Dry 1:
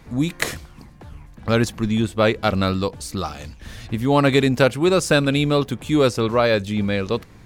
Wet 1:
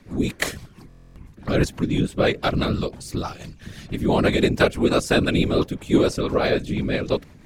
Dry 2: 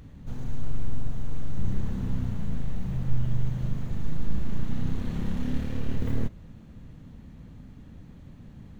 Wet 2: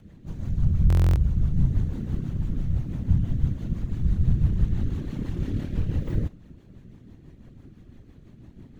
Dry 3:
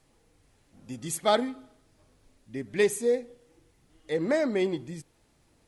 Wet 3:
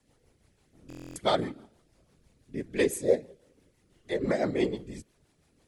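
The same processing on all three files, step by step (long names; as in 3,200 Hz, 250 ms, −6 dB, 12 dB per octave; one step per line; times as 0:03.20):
random phases in short frames
rotating-speaker cabinet horn 6 Hz
buffer that repeats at 0:00.88, samples 1,024, times 11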